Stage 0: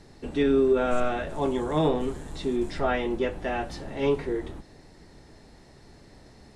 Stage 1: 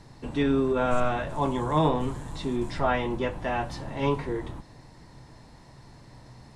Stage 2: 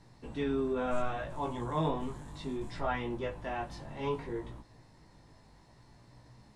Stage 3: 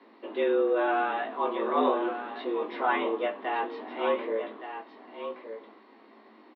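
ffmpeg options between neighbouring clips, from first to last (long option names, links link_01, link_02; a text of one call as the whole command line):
ffmpeg -i in.wav -af "equalizer=frequency=125:width_type=o:width=0.33:gain=11,equalizer=frequency=400:width_type=o:width=0.33:gain=-6,equalizer=frequency=1000:width_type=o:width=0.33:gain=9" out.wav
ffmpeg -i in.wav -af "flanger=delay=17:depth=2.9:speed=0.66,volume=-5.5dB" out.wav
ffmpeg -i in.wav -af "aecho=1:1:1169:0.335,highpass=frequency=170:width_type=q:width=0.5412,highpass=frequency=170:width_type=q:width=1.307,lowpass=frequency=3500:width_type=q:width=0.5176,lowpass=frequency=3500:width_type=q:width=0.7071,lowpass=frequency=3500:width_type=q:width=1.932,afreqshift=99,volume=7dB" out.wav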